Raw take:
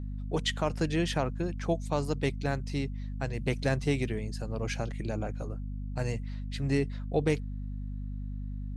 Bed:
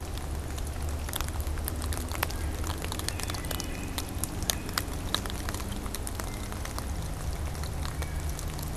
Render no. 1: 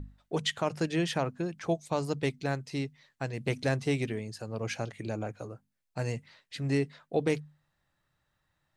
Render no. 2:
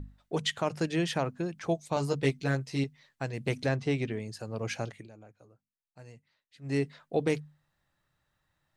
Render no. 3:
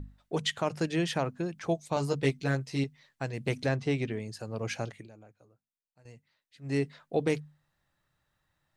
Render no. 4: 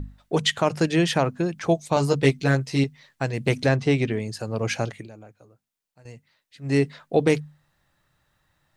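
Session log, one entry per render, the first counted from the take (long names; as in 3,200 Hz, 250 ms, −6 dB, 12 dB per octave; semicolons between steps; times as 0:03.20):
mains-hum notches 50/100/150/200/250 Hz
0:01.95–0:02.84: double-tracking delay 15 ms −3 dB; 0:03.66–0:04.20: high-frequency loss of the air 87 metres; 0:04.90–0:06.79: duck −17.5 dB, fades 0.18 s
0:05.02–0:06.05: fade out, to −13 dB
level +8.5 dB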